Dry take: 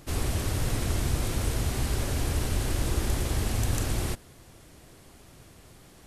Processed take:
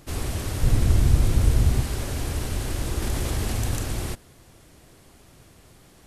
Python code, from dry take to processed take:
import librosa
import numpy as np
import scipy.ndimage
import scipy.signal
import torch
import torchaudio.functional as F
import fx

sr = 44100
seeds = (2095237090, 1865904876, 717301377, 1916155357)

y = fx.low_shelf(x, sr, hz=230.0, db=11.0, at=(0.63, 1.81))
y = fx.env_flatten(y, sr, amount_pct=50, at=(3.02, 3.76))